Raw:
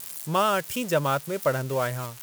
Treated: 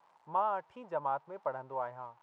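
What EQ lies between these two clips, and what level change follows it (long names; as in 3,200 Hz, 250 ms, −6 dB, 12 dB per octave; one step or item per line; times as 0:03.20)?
resonant band-pass 890 Hz, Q 5.2
high-frequency loss of the air 73 metres
spectral tilt −2 dB per octave
0.0 dB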